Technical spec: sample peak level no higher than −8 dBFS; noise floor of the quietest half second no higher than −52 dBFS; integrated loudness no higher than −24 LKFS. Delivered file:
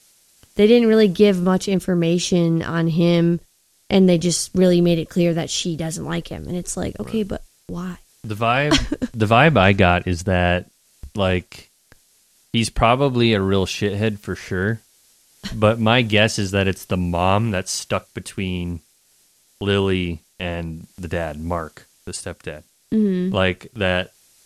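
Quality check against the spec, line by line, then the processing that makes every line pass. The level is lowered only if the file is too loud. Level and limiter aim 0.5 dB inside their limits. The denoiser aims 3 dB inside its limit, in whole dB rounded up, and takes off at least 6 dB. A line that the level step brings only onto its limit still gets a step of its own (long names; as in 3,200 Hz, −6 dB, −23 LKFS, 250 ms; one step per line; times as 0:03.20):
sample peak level −2.0 dBFS: out of spec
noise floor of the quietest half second −59 dBFS: in spec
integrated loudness −19.5 LKFS: out of spec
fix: level −5 dB
brickwall limiter −8.5 dBFS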